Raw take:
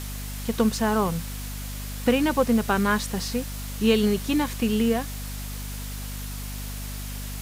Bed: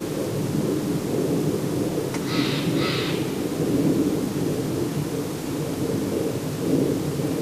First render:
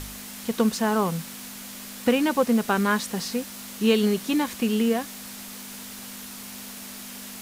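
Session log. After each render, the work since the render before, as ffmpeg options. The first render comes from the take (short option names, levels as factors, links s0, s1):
-af "bandreject=f=50:t=h:w=4,bandreject=f=100:t=h:w=4,bandreject=f=150:t=h:w=4"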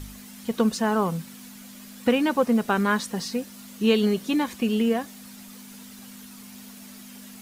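-af "afftdn=nr=9:nf=-40"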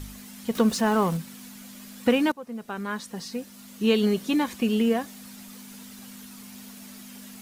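-filter_complex "[0:a]asettb=1/sr,asplit=3[s0][s1][s2];[s0]atrim=end=0.554[s3];[s1]atrim=start=0.55:end=1.17,asetpts=PTS-STARTPTS,afade=t=in:d=0.004:c=qsin,afade=t=out:st=0.616:d=0.004:c=qsin,aeval=exprs='val(0)+0.5*0.0188*sgn(val(0))':c=same[s4];[s2]atrim=start=1.166[s5];[s3][s4]acrossfade=d=0.004:c1=hsin:c2=qsin[s6];[s6][s5]acrossfade=d=0.004:c1=qsin:c2=hsin,asplit=2[s7][s8];[s7]atrim=end=2.32,asetpts=PTS-STARTPTS,afade=t=out:st=2.316:d=0.004:c=hsin:silence=0.0794328[s9];[s8]atrim=start=2.32,asetpts=PTS-STARTPTS,afade=t=in:d=1.87:silence=0.0794328[s10];[s9][s10]concat=n=2:v=0:a=1"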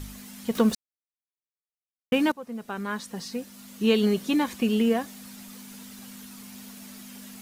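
-filter_complex "[0:a]asplit=3[s0][s1][s2];[s0]atrim=end=0.75,asetpts=PTS-STARTPTS,afade=t=out:st=0.746:d=0.004:c=hsin[s3];[s1]atrim=start=0.75:end=2.12,asetpts=PTS-STARTPTS,volume=0[s4];[s2]atrim=start=2.12,asetpts=PTS-STARTPTS,afade=t=in:d=0.004:c=hsin[s5];[s3][s4][s5]concat=n=3:v=0:a=1"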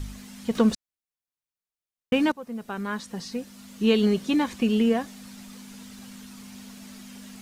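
-filter_complex "[0:a]acrossover=split=9100[s0][s1];[s1]acompressor=threshold=0.00112:ratio=4:attack=1:release=60[s2];[s0][s2]amix=inputs=2:normalize=0,lowshelf=f=110:g=7"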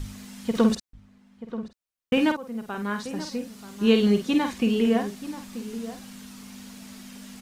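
-filter_complex "[0:a]asplit=2[s0][s1];[s1]adelay=49,volume=0.447[s2];[s0][s2]amix=inputs=2:normalize=0,asplit=2[s3][s4];[s4]adelay=932.9,volume=0.224,highshelf=f=4000:g=-21[s5];[s3][s5]amix=inputs=2:normalize=0"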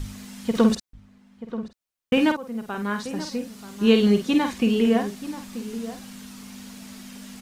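-af "volume=1.26"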